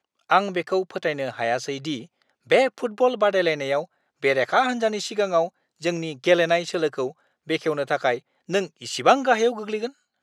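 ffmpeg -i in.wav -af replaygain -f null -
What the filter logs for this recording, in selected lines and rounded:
track_gain = +2.1 dB
track_peak = 0.573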